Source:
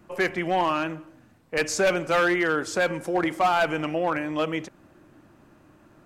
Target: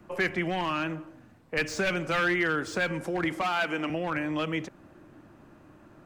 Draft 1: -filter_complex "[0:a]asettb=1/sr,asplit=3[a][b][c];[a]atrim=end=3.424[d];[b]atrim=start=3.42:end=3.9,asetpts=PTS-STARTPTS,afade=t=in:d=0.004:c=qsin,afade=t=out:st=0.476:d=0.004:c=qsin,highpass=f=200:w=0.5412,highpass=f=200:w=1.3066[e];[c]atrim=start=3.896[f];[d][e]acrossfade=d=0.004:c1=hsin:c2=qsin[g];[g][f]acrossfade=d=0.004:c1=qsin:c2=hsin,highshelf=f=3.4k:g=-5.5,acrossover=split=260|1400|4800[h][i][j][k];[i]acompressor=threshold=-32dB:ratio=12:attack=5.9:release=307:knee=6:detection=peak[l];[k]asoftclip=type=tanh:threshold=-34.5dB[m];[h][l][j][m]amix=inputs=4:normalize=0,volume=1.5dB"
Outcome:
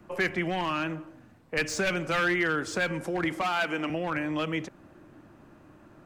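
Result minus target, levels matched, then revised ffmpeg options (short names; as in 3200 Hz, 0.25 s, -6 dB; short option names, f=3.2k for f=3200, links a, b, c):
soft clip: distortion -8 dB
-filter_complex "[0:a]asettb=1/sr,asplit=3[a][b][c];[a]atrim=end=3.424[d];[b]atrim=start=3.42:end=3.9,asetpts=PTS-STARTPTS,afade=t=in:d=0.004:c=qsin,afade=t=out:st=0.476:d=0.004:c=qsin,highpass=f=200:w=0.5412,highpass=f=200:w=1.3066[e];[c]atrim=start=3.896[f];[d][e]acrossfade=d=0.004:c1=hsin:c2=qsin[g];[g][f]acrossfade=d=0.004:c1=qsin:c2=hsin,highshelf=f=3.4k:g=-5.5,acrossover=split=260|1400|4800[h][i][j][k];[i]acompressor=threshold=-32dB:ratio=12:attack=5.9:release=307:knee=6:detection=peak[l];[k]asoftclip=type=tanh:threshold=-45dB[m];[h][l][j][m]amix=inputs=4:normalize=0,volume=1.5dB"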